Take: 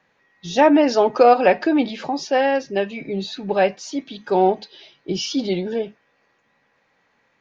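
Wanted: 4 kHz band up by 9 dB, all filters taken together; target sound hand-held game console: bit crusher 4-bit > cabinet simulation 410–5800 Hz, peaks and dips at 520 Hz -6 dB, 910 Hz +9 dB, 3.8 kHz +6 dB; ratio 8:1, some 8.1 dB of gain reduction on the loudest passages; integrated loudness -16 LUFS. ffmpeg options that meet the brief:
-af "equalizer=f=4000:t=o:g=8,acompressor=threshold=0.158:ratio=8,acrusher=bits=3:mix=0:aa=0.000001,highpass=410,equalizer=f=520:t=q:w=4:g=-6,equalizer=f=910:t=q:w=4:g=9,equalizer=f=3800:t=q:w=4:g=6,lowpass=f=5800:w=0.5412,lowpass=f=5800:w=1.3066,volume=2"

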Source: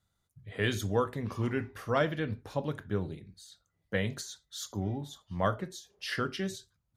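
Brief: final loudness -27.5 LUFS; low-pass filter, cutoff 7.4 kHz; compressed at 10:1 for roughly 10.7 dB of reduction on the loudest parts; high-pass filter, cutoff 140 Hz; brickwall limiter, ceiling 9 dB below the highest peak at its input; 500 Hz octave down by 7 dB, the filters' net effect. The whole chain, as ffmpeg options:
-af "highpass=140,lowpass=7400,equalizer=f=500:t=o:g=-8.5,acompressor=threshold=0.0141:ratio=10,volume=8.41,alimiter=limit=0.168:level=0:latency=1"

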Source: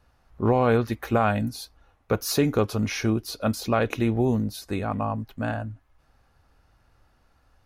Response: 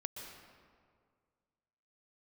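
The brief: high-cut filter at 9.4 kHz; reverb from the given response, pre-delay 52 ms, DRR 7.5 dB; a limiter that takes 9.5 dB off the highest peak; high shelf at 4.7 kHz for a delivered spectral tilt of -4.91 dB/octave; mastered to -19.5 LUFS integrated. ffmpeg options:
-filter_complex "[0:a]lowpass=9400,highshelf=f=4700:g=7.5,alimiter=limit=0.106:level=0:latency=1,asplit=2[s0][s1];[1:a]atrim=start_sample=2205,adelay=52[s2];[s1][s2]afir=irnorm=-1:irlink=0,volume=0.501[s3];[s0][s3]amix=inputs=2:normalize=0,volume=2.99"

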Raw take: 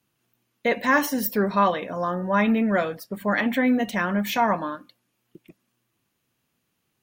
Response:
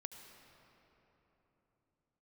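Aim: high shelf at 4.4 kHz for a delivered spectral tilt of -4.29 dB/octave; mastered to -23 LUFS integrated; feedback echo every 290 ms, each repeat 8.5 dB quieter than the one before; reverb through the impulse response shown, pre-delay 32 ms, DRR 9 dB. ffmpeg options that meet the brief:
-filter_complex "[0:a]highshelf=f=4400:g=-3,aecho=1:1:290|580|870|1160:0.376|0.143|0.0543|0.0206,asplit=2[s0][s1];[1:a]atrim=start_sample=2205,adelay=32[s2];[s1][s2]afir=irnorm=-1:irlink=0,volume=0.562[s3];[s0][s3]amix=inputs=2:normalize=0,volume=0.944"

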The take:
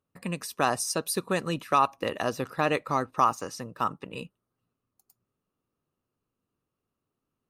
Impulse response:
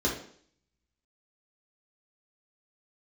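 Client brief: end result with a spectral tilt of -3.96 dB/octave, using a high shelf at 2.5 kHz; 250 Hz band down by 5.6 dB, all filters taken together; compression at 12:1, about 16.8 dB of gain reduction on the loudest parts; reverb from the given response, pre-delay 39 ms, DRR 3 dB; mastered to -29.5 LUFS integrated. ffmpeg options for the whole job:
-filter_complex "[0:a]equalizer=f=250:t=o:g=-8.5,highshelf=f=2500:g=6,acompressor=threshold=0.0224:ratio=12,asplit=2[s0][s1];[1:a]atrim=start_sample=2205,adelay=39[s2];[s1][s2]afir=irnorm=-1:irlink=0,volume=0.224[s3];[s0][s3]amix=inputs=2:normalize=0,volume=2.24"

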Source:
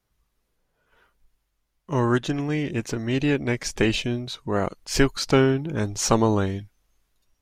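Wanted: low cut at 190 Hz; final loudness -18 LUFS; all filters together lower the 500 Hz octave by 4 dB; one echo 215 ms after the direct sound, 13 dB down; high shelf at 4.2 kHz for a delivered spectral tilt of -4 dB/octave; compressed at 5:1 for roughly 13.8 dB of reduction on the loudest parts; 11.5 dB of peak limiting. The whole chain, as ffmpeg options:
-af "highpass=190,equalizer=f=500:t=o:g=-5,highshelf=f=4200:g=-6.5,acompressor=threshold=0.0251:ratio=5,alimiter=level_in=1.41:limit=0.0631:level=0:latency=1,volume=0.708,aecho=1:1:215:0.224,volume=10"

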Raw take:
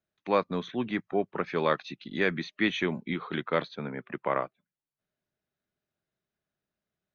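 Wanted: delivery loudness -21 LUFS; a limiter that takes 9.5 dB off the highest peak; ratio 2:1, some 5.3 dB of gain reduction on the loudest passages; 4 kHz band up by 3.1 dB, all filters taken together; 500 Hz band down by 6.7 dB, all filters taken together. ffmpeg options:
-af "equalizer=f=500:t=o:g=-8.5,equalizer=f=4000:t=o:g=4,acompressor=threshold=0.0251:ratio=2,volume=7.94,alimiter=limit=0.398:level=0:latency=1"

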